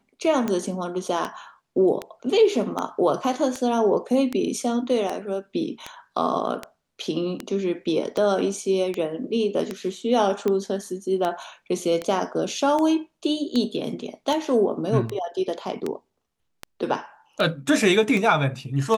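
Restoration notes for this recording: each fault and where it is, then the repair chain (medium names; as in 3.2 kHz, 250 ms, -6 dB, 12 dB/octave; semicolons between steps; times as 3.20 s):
tick 78 rpm -13 dBFS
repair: de-click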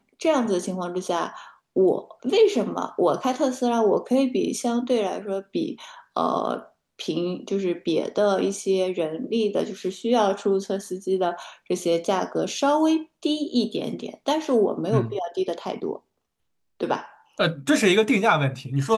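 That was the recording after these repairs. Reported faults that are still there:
nothing left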